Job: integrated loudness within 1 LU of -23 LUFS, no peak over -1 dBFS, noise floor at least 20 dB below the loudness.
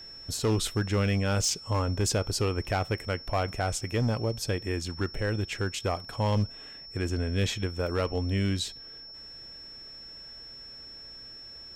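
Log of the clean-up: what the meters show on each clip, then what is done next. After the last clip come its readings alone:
clipped samples 0.8%; clipping level -20.5 dBFS; steady tone 5.4 kHz; tone level -43 dBFS; loudness -29.5 LUFS; peak level -20.5 dBFS; loudness target -23.0 LUFS
-> clip repair -20.5 dBFS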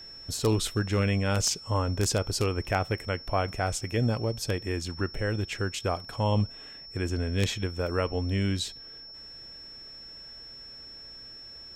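clipped samples 0.0%; steady tone 5.4 kHz; tone level -43 dBFS
-> band-stop 5.4 kHz, Q 30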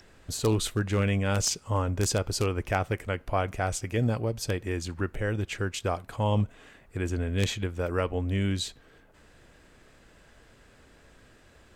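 steady tone not found; loudness -29.0 LUFS; peak level -11.5 dBFS; loudness target -23.0 LUFS
-> trim +6 dB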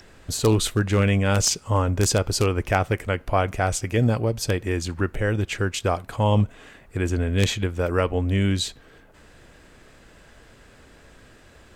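loudness -23.0 LUFS; peak level -5.5 dBFS; noise floor -52 dBFS

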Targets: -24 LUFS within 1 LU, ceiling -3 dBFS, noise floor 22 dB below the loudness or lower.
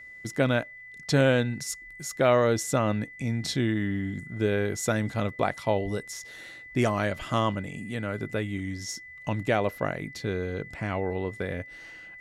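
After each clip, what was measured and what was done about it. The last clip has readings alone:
steady tone 2 kHz; tone level -43 dBFS; loudness -28.5 LUFS; peak level -11.0 dBFS; loudness target -24.0 LUFS
-> band-stop 2 kHz, Q 30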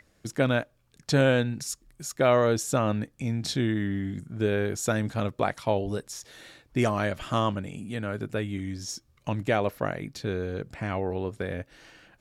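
steady tone not found; loudness -28.5 LUFS; peak level -10.5 dBFS; loudness target -24.0 LUFS
-> trim +4.5 dB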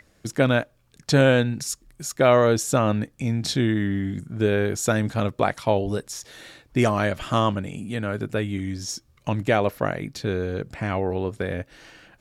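loudness -24.0 LUFS; peak level -6.0 dBFS; noise floor -61 dBFS

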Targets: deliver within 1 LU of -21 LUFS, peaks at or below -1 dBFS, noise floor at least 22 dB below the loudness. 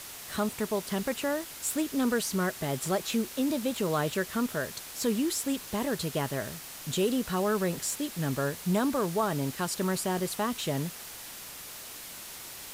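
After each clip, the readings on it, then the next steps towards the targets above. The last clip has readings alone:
noise floor -44 dBFS; noise floor target -53 dBFS; loudness -31.0 LUFS; peak level -16.0 dBFS; loudness target -21.0 LUFS
-> noise reduction 9 dB, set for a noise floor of -44 dBFS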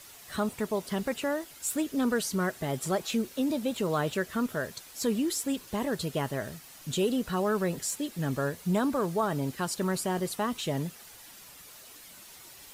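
noise floor -50 dBFS; noise floor target -53 dBFS
-> noise reduction 6 dB, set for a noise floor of -50 dBFS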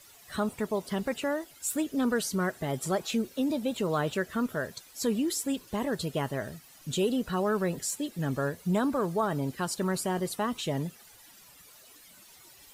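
noise floor -55 dBFS; loudness -31.0 LUFS; peak level -16.5 dBFS; loudness target -21.0 LUFS
-> trim +10 dB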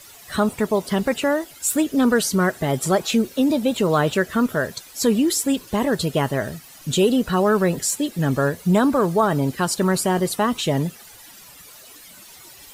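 loudness -21.0 LUFS; peak level -6.5 dBFS; noise floor -45 dBFS

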